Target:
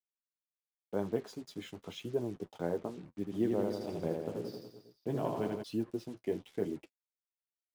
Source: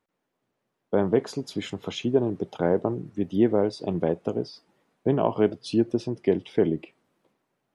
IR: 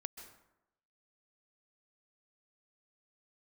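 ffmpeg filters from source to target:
-filter_complex "[0:a]acrusher=bits=6:mix=0:aa=0.5,flanger=delay=8.5:depth=5.1:regen=-31:speed=0.88:shape=triangular,asplit=3[link_01][link_02][link_03];[link_01]afade=type=out:start_time=3.26:duration=0.02[link_04];[link_02]aecho=1:1:80|168|264.8|371.3|488.4:0.631|0.398|0.251|0.158|0.1,afade=type=in:start_time=3.26:duration=0.02,afade=type=out:start_time=5.62:duration=0.02[link_05];[link_03]afade=type=in:start_time=5.62:duration=0.02[link_06];[link_04][link_05][link_06]amix=inputs=3:normalize=0,volume=-9dB"

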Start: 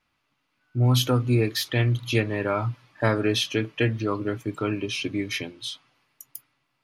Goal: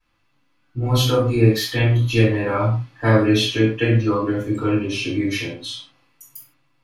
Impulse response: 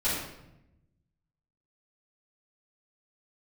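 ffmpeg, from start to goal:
-filter_complex "[1:a]atrim=start_sample=2205,afade=type=out:start_time=0.36:duration=0.01,atrim=end_sample=16317,asetrate=79380,aresample=44100[link_01];[0:a][link_01]afir=irnorm=-1:irlink=0,volume=-1dB"

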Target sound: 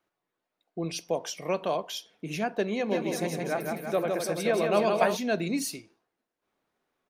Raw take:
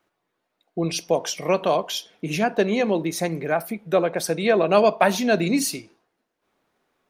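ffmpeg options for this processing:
ffmpeg -i in.wav -filter_complex "[0:a]asplit=3[link_01][link_02][link_03];[link_01]afade=type=out:start_time=2.9:duration=0.02[link_04];[link_02]aecho=1:1:160|336|529.6|742.6|976.8:0.631|0.398|0.251|0.158|0.1,afade=type=in:start_time=2.9:duration=0.02,afade=type=out:start_time=5.15:duration=0.02[link_05];[link_03]afade=type=in:start_time=5.15:duration=0.02[link_06];[link_04][link_05][link_06]amix=inputs=3:normalize=0,volume=-8dB" out.wav

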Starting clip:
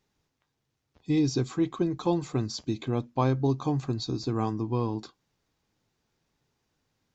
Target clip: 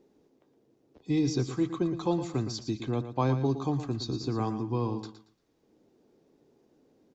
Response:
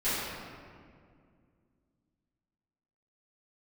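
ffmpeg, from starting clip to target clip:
-filter_complex "[0:a]acrossover=split=290|450|2800[link_01][link_02][link_03][link_04];[link_02]acompressor=mode=upward:threshold=-42dB:ratio=2.5[link_05];[link_01][link_05][link_03][link_04]amix=inputs=4:normalize=0,aecho=1:1:115|230|345:0.299|0.0746|0.0187,volume=-2dB"

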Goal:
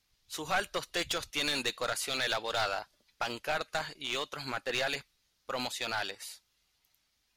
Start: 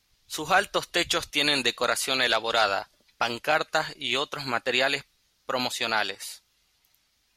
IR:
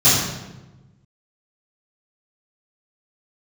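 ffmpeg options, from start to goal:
-af "aeval=exprs='clip(val(0),-1,0.0891)':channel_layout=same,volume=-6.5dB"

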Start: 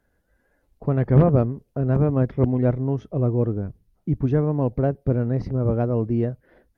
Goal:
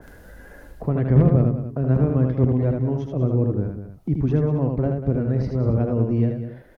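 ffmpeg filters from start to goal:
ffmpeg -i in.wav -filter_complex "[0:a]acrossover=split=360[link_01][link_02];[link_02]acompressor=threshold=-30dB:ratio=3[link_03];[link_01][link_03]amix=inputs=2:normalize=0,asplit=2[link_04][link_05];[link_05]aecho=0:1:193:0.282[link_06];[link_04][link_06]amix=inputs=2:normalize=0,acompressor=mode=upward:threshold=-27dB:ratio=2.5,asplit=2[link_07][link_08];[link_08]aecho=0:1:78:0.631[link_09];[link_07][link_09]amix=inputs=2:normalize=0,adynamicequalizer=threshold=0.00891:dfrequency=1900:dqfactor=0.7:tfrequency=1900:tqfactor=0.7:attack=5:release=100:ratio=0.375:range=1.5:mode=boostabove:tftype=highshelf" out.wav

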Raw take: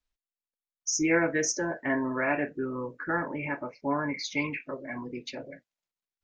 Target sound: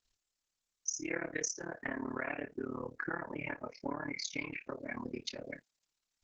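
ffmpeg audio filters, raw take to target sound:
ffmpeg -i in.wav -af "equalizer=frequency=7100:width=0.47:gain=10.5,acompressor=threshold=-39dB:ratio=4,tremolo=f=36:d=1,volume=5.5dB" -ar 48000 -c:a libopus -b:a 10k out.opus

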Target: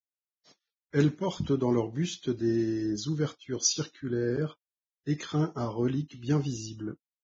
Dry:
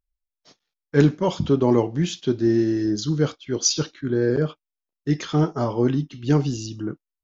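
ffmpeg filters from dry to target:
ffmpeg -i in.wav -filter_complex "[0:a]acrossover=split=600|750[link_01][link_02][link_03];[link_02]acompressor=threshold=-47dB:ratio=6[link_04];[link_01][link_04][link_03]amix=inputs=3:normalize=0,volume=-7.5dB" -ar 22050 -c:a libvorbis -b:a 16k out.ogg

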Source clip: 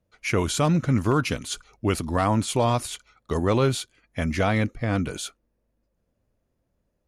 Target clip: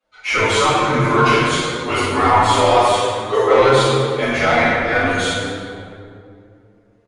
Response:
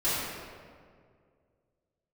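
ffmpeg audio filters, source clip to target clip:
-filter_complex "[0:a]tiltshelf=frequency=880:gain=-6,asplit=2[link_01][link_02];[link_02]highpass=frequency=720:poles=1,volume=13dB,asoftclip=type=tanh:threshold=-8.5dB[link_03];[link_01][link_03]amix=inputs=2:normalize=0,lowpass=frequency=1500:poles=1,volume=-6dB,asettb=1/sr,asplit=3[link_04][link_05][link_06];[link_04]atrim=end=2.664[link_07];[link_05]atrim=start=2.66:end=3.53,asetpts=PTS-STARTPTS,afade=type=in:duration=0.004:curve=qsin,afade=type=out:start_time=0.866:duration=0.004:curve=qsin,lowshelf=frequency=280:width_type=q:width=3:gain=-13.5[link_08];[link_06]atrim=start=3.526[link_09];[link_07][link_08]acrossfade=duration=0.004:curve1=hsin:curve2=qsin[link_10];[link_10][link_09]acrossfade=duration=0.004:curve1=qsin:curve2=hsin,acrossover=split=180[link_11][link_12];[link_11]adelay=30[link_13];[link_13][link_12]amix=inputs=2:normalize=0[link_14];[1:a]atrim=start_sample=2205,asetrate=33957,aresample=44100[link_15];[link_14][link_15]afir=irnorm=-1:irlink=0,asoftclip=type=tanh:threshold=-0.5dB,aresample=22050,aresample=44100,asplit=2[link_16][link_17];[link_17]adelay=7.5,afreqshift=0.33[link_18];[link_16][link_18]amix=inputs=2:normalize=1"

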